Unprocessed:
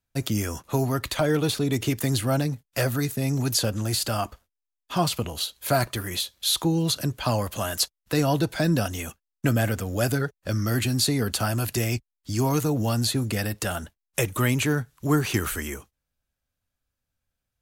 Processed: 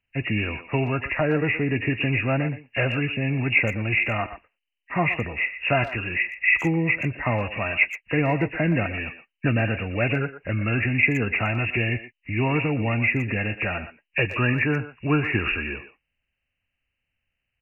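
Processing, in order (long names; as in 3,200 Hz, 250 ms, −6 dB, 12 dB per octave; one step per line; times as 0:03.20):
hearing-aid frequency compression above 1,600 Hz 4 to 1
far-end echo of a speakerphone 120 ms, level −12 dB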